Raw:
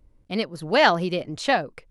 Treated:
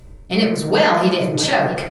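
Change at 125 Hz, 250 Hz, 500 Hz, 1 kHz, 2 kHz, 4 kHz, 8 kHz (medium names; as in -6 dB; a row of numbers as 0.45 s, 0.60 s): +10.5 dB, +9.0 dB, +6.0 dB, +3.5 dB, +3.0 dB, +6.0 dB, +14.0 dB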